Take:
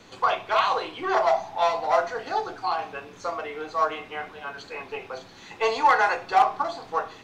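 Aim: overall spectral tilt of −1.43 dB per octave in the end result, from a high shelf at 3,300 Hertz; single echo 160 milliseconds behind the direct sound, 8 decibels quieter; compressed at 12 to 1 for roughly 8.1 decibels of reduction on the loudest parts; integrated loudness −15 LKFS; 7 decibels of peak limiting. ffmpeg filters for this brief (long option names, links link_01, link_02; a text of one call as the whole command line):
ffmpeg -i in.wav -af "highshelf=frequency=3300:gain=-7,acompressor=threshold=-22dB:ratio=12,alimiter=limit=-22dB:level=0:latency=1,aecho=1:1:160:0.398,volume=17.5dB" out.wav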